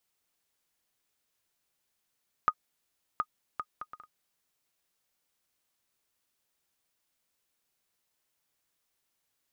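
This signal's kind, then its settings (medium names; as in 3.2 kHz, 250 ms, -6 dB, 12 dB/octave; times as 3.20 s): bouncing ball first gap 0.72 s, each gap 0.55, 1.24 kHz, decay 57 ms -12.5 dBFS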